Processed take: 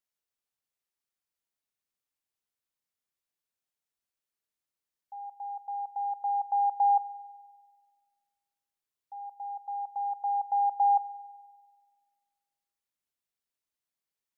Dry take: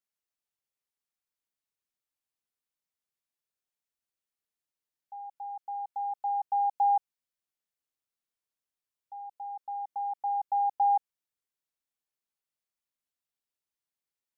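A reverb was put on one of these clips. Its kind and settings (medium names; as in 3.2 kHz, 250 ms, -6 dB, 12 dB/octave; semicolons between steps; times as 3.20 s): spring tank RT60 1.6 s, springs 48 ms, chirp 55 ms, DRR 17.5 dB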